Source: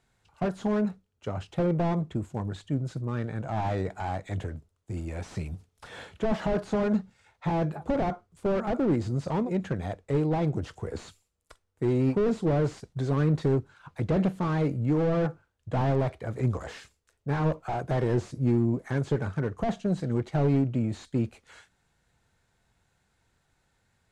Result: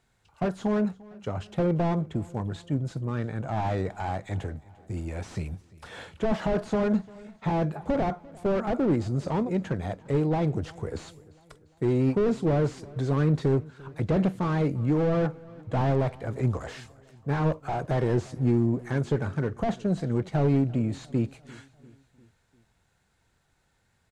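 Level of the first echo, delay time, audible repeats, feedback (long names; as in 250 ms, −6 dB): −22.5 dB, 347 ms, 3, 54%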